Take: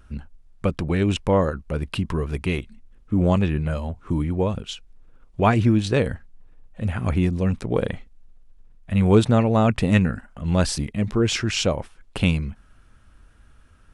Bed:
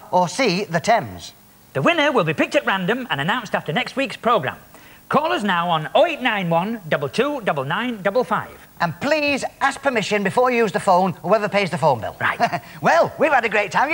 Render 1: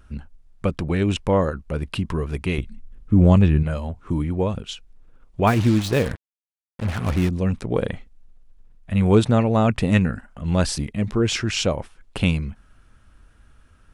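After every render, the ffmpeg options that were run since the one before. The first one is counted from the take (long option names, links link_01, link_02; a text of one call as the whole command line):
ffmpeg -i in.wav -filter_complex "[0:a]asettb=1/sr,asplit=3[link_01][link_02][link_03];[link_01]atrim=end=2.584[link_04];[link_02]atrim=start=2.58:end=3.63,asetpts=PTS-STARTPTS,afade=type=in:duration=0.004:curve=qsin,afade=type=out:start_time=1.046:duration=0.004:curve=qsin,lowshelf=frequency=210:gain=9[link_05];[link_03]atrim=start=3.626[link_06];[link_04][link_05]acrossfade=duration=0.004:curve1=hsin:curve2=qsin[link_07];[link_07][link_06]acrossfade=duration=0.004:curve1=qsin:curve2=hsin,asettb=1/sr,asplit=3[link_08][link_09][link_10];[link_08]atrim=end=5.474[link_11];[link_09]atrim=start=5.47:end=7.29,asetpts=PTS-STARTPTS,afade=type=in:duration=0.004:curve=qsin,afade=type=out:start_time=1.816:duration=0.004:curve=qsin,acrusher=bits=4:mix=0:aa=0.5[link_12];[link_10]atrim=start=7.286[link_13];[link_11][link_12]acrossfade=duration=0.004:curve1=hsin:curve2=qsin[link_14];[link_14][link_13]acrossfade=duration=0.004:curve1=qsin:curve2=hsin" out.wav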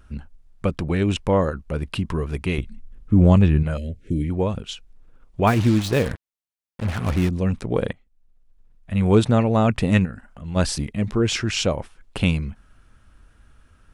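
ffmpeg -i in.wav -filter_complex "[0:a]asettb=1/sr,asplit=3[link_01][link_02][link_03];[link_01]atrim=end=3.774[link_04];[link_02]atrim=start=3.77:end=4.3,asetpts=PTS-STARTPTS,afade=type=in:duration=0.004:curve=qsin,afade=type=out:start_time=0.526:duration=0.004:curve=qsin,asuperstop=centerf=1000:order=8:qfactor=0.83[link_05];[link_03]atrim=start=4.296[link_06];[link_04][link_05]acrossfade=duration=0.004:curve1=hsin:curve2=qsin[link_07];[link_07][link_06]acrossfade=duration=0.004:curve1=qsin:curve2=hsin,asplit=3[link_08][link_09][link_10];[link_08]afade=type=out:start_time=10.04:duration=0.02[link_11];[link_09]acompressor=threshold=-42dB:ratio=1.5:attack=3.2:release=140:knee=1:detection=peak,afade=type=in:start_time=10.04:duration=0.02,afade=type=out:start_time=10.55:duration=0.02[link_12];[link_10]afade=type=in:start_time=10.55:duration=0.02[link_13];[link_11][link_12][link_13]amix=inputs=3:normalize=0,asplit=2[link_14][link_15];[link_14]atrim=end=7.93,asetpts=PTS-STARTPTS,afade=type=out:start_time=7.926:duration=0.004:curve=hsin:silence=0.0749894[link_16];[link_15]atrim=start=7.93,asetpts=PTS-STARTPTS,afade=type=in:duration=1.27:silence=0.0749894[link_17];[link_16][link_17]concat=n=2:v=0:a=1" out.wav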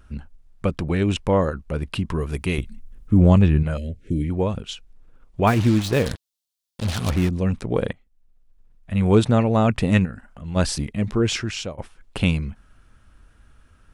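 ffmpeg -i in.wav -filter_complex "[0:a]asettb=1/sr,asplit=3[link_01][link_02][link_03];[link_01]atrim=end=2.204[link_04];[link_02]atrim=start=2.2:end=3.18,asetpts=PTS-STARTPTS,afade=type=in:duration=0.004:curve=qsin,afade=type=out:start_time=0.976:duration=0.004:curve=qsin,highshelf=frequency=7800:gain=11[link_05];[link_03]atrim=start=3.176[link_06];[link_04][link_05]acrossfade=duration=0.004:curve1=hsin:curve2=qsin[link_07];[link_07][link_06]acrossfade=duration=0.004:curve1=qsin:curve2=hsin,asettb=1/sr,asplit=3[link_08][link_09][link_10];[link_08]atrim=end=6.064[link_11];[link_09]atrim=start=6.06:end=7.1,asetpts=PTS-STARTPTS,afade=type=in:duration=0.004:curve=qsin,afade=type=out:start_time=1.036:duration=0.004:curve=qsin,highshelf=frequency=2800:width_type=q:width=1.5:gain=9[link_12];[link_10]atrim=start=7.096[link_13];[link_11][link_12]acrossfade=duration=0.004:curve1=hsin:curve2=qsin[link_14];[link_14][link_13]acrossfade=duration=0.004:curve1=qsin:curve2=hsin,asplit=2[link_15][link_16];[link_15]atrim=end=11.78,asetpts=PTS-STARTPTS,afade=type=out:start_time=11.28:duration=0.5:silence=0.149624[link_17];[link_16]atrim=start=11.78,asetpts=PTS-STARTPTS,afade=type=in:duration=0.004:curve=hsin:silence=0.149624[link_18];[link_17][link_18]concat=n=2:v=0:a=1" out.wav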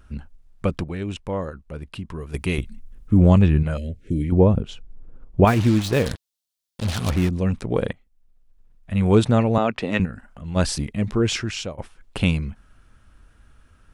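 ffmpeg -i in.wav -filter_complex "[0:a]asettb=1/sr,asplit=3[link_01][link_02][link_03];[link_01]atrim=end=4.324[link_04];[link_02]atrim=start=4.32:end=5.45,asetpts=PTS-STARTPTS,afade=type=in:duration=0.004:curve=qsin,afade=type=out:start_time=1.126:duration=0.004:curve=qsin,tiltshelf=frequency=1200:gain=9[link_05];[link_03]atrim=start=5.446[link_06];[link_04][link_05]acrossfade=duration=0.004:curve1=hsin:curve2=qsin[link_07];[link_07][link_06]acrossfade=duration=0.004:curve1=qsin:curve2=hsin,asettb=1/sr,asplit=3[link_08][link_09][link_10];[link_08]atrim=end=9.584[link_11];[link_09]atrim=start=9.58:end=10,asetpts=PTS-STARTPTS,afade=type=in:duration=0.004:curve=qsin,afade=type=out:start_time=0.416:duration=0.004:curve=qsin,acrossover=split=240 5700:gain=0.141 1 0.178[link_12][link_13][link_14];[link_12][link_13][link_14]amix=inputs=3:normalize=0[link_15];[link_10]atrim=start=9.996[link_16];[link_11][link_15]acrossfade=duration=0.004:curve1=hsin:curve2=qsin[link_17];[link_17][link_16]acrossfade=duration=0.004:curve1=qsin:curve2=hsin,asplit=3[link_18][link_19][link_20];[link_18]atrim=end=0.842[link_21];[link_19]atrim=start=0.838:end=2.342,asetpts=PTS-STARTPTS,volume=-8dB[link_22];[link_20]atrim=start=2.338[link_23];[link_21][link_22]acrossfade=duration=0.004:curve1=hsin:curve2=hsin[link_24];[link_24][link_23]acrossfade=duration=0.004:curve1=hsin:curve2=hsin" out.wav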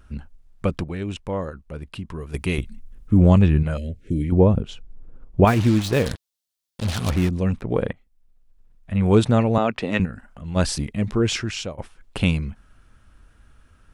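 ffmpeg -i in.wav -filter_complex "[0:a]asettb=1/sr,asplit=3[link_01][link_02][link_03];[link_01]atrim=end=7.604[link_04];[link_02]atrim=start=7.6:end=9.11,asetpts=PTS-STARTPTS,afade=type=in:duration=0.004:curve=qsin,afade=type=out:start_time=1.506:duration=0.004:curve=qsin,acrossover=split=2900[link_05][link_06];[link_06]acompressor=threshold=-52dB:ratio=4:attack=1:release=60[link_07];[link_05][link_07]amix=inputs=2:normalize=0[link_08];[link_03]atrim=start=9.106[link_09];[link_04][link_08]acrossfade=duration=0.004:curve1=hsin:curve2=qsin[link_10];[link_10][link_09]acrossfade=duration=0.004:curve1=qsin:curve2=hsin" out.wav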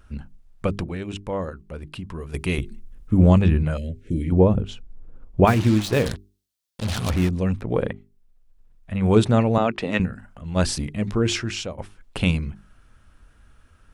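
ffmpeg -i in.wav -af "bandreject=frequency=50:width_type=h:width=6,bandreject=frequency=100:width_type=h:width=6,bandreject=frequency=150:width_type=h:width=6,bandreject=frequency=200:width_type=h:width=6,bandreject=frequency=250:width_type=h:width=6,bandreject=frequency=300:width_type=h:width=6,bandreject=frequency=350:width_type=h:width=6,bandreject=frequency=400:width_type=h:width=6" out.wav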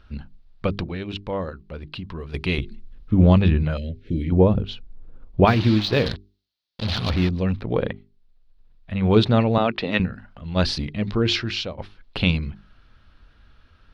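ffmpeg -i in.wav -af "highshelf=frequency=5900:width_type=q:width=3:gain=-12.5" out.wav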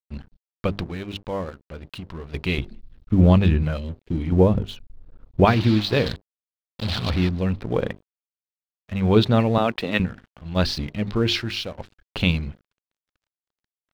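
ffmpeg -i in.wav -af "aeval=exprs='sgn(val(0))*max(abs(val(0))-0.00708,0)':channel_layout=same" out.wav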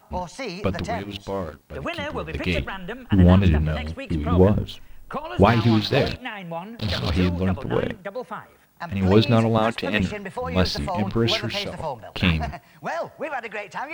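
ffmpeg -i in.wav -i bed.wav -filter_complex "[1:a]volume=-13dB[link_01];[0:a][link_01]amix=inputs=2:normalize=0" out.wav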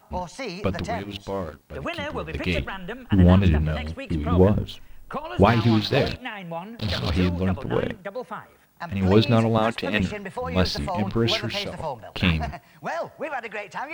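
ffmpeg -i in.wav -af "volume=-1dB" out.wav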